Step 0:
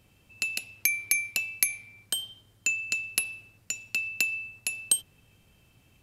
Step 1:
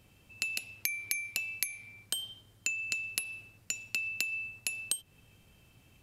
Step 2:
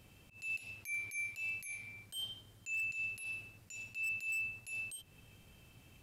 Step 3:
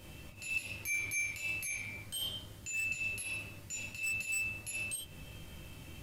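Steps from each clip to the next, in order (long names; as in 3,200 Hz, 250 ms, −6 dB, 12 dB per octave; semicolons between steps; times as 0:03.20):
downward compressor 6 to 1, threshold −30 dBFS, peak gain reduction 11.5 dB
volume swells 106 ms; wave folding −34.5 dBFS; level +1 dB
convolution reverb, pre-delay 3 ms, DRR −2 dB; level +6.5 dB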